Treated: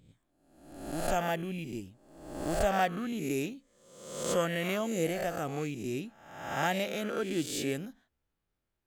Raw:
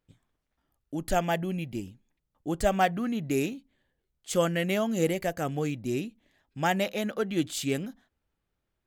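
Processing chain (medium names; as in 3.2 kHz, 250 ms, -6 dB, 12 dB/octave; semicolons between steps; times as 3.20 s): reverse spectral sustain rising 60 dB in 0.89 s; trim -6 dB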